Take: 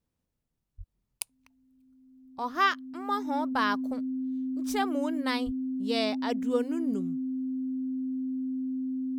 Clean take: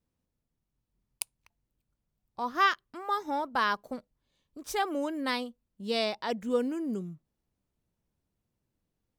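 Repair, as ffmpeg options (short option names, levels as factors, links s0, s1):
-filter_complex "[0:a]bandreject=f=260:w=30,asplit=3[s0][s1][s2];[s0]afade=t=out:st=0.77:d=0.02[s3];[s1]highpass=f=140:w=0.5412,highpass=f=140:w=1.3066,afade=t=in:st=0.77:d=0.02,afade=t=out:st=0.89:d=0.02[s4];[s2]afade=t=in:st=0.89:d=0.02[s5];[s3][s4][s5]amix=inputs=3:normalize=0,asplit=3[s6][s7][s8];[s6]afade=t=out:st=5.45:d=0.02[s9];[s7]highpass=f=140:w=0.5412,highpass=f=140:w=1.3066,afade=t=in:st=5.45:d=0.02,afade=t=out:st=5.57:d=0.02[s10];[s8]afade=t=in:st=5.57:d=0.02[s11];[s9][s10][s11]amix=inputs=3:normalize=0"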